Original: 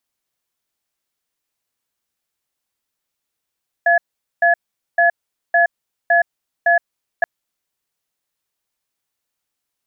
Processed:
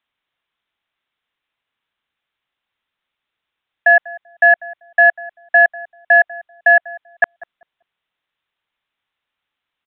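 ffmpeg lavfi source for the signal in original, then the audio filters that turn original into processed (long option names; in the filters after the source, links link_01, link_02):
-f lavfi -i "aevalsrc='0.224*(sin(2*PI*688*t)+sin(2*PI*1700*t))*clip(min(mod(t,0.56),0.12-mod(t,0.56))/0.005,0,1)':duration=3.38:sample_rate=44100"
-filter_complex "[0:a]acrossover=split=600|810[link_01][link_02][link_03];[link_03]acontrast=90[link_04];[link_01][link_02][link_04]amix=inputs=3:normalize=0,asplit=2[link_05][link_06];[link_06]adelay=194,lowpass=frequency=830:poles=1,volume=-16dB,asplit=2[link_07][link_08];[link_08]adelay=194,lowpass=frequency=830:poles=1,volume=0.26,asplit=2[link_09][link_10];[link_10]adelay=194,lowpass=frequency=830:poles=1,volume=0.26[link_11];[link_05][link_07][link_09][link_11]amix=inputs=4:normalize=0,aresample=8000,aresample=44100"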